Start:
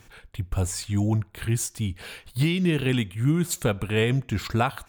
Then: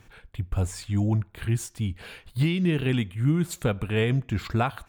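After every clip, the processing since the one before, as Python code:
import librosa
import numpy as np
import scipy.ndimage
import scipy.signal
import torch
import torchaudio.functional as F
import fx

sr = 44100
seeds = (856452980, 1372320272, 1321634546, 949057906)

y = fx.bass_treble(x, sr, bass_db=2, treble_db=-6)
y = F.gain(torch.from_numpy(y), -2.0).numpy()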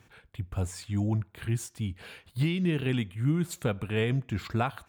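y = scipy.signal.sosfilt(scipy.signal.butter(2, 74.0, 'highpass', fs=sr, output='sos'), x)
y = F.gain(torch.from_numpy(y), -3.5).numpy()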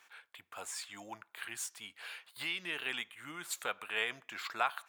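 y = scipy.signal.sosfilt(scipy.signal.cheby1(2, 1.0, 1100.0, 'highpass', fs=sr, output='sos'), x)
y = F.gain(torch.from_numpy(y), 1.5).numpy()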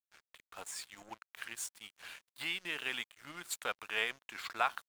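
y = np.sign(x) * np.maximum(np.abs(x) - 10.0 ** (-51.0 / 20.0), 0.0)
y = F.gain(torch.from_numpy(y), 1.0).numpy()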